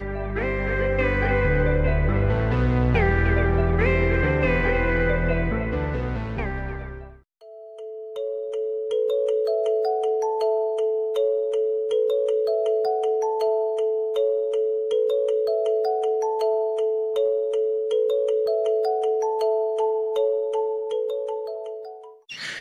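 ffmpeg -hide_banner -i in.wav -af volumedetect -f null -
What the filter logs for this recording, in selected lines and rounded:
mean_volume: -22.7 dB
max_volume: -7.7 dB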